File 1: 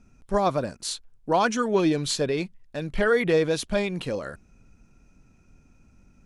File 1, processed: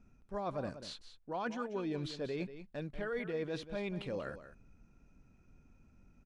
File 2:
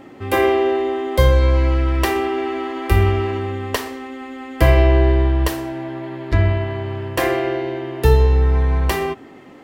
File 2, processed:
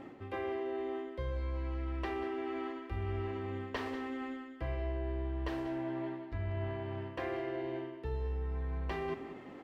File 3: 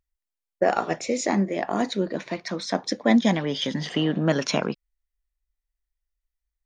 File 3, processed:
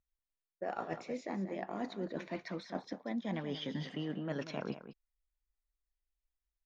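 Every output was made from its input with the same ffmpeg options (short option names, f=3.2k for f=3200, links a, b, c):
-filter_complex "[0:a]acrossover=split=5100[a][b];[b]acompressor=threshold=-47dB:ratio=4:attack=1:release=60[c];[a][c]amix=inputs=2:normalize=0,highshelf=f=5.2k:g=-12,areverse,acompressor=threshold=-29dB:ratio=6,areverse,aecho=1:1:188:0.251,volume=-6.5dB"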